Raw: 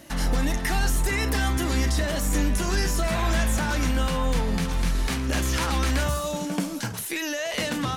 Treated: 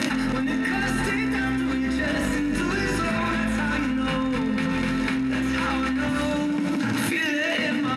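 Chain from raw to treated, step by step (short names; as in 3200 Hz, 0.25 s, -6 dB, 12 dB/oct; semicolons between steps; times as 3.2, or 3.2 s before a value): bell 6000 Hz -13.5 dB 1.3 oct; crackle 45/s -25 dBFS; speaker cabinet 190–8700 Hz, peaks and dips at 260 Hz +5 dB, 440 Hz -5 dB, 790 Hz -4 dB, 1200 Hz -5 dB, 1900 Hz +8 dB, 7900 Hz -6 dB; feedback echo 0.166 s, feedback 58%, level -10 dB; reverb, pre-delay 4 ms, DRR 6 dB; fast leveller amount 100%; gain -8.5 dB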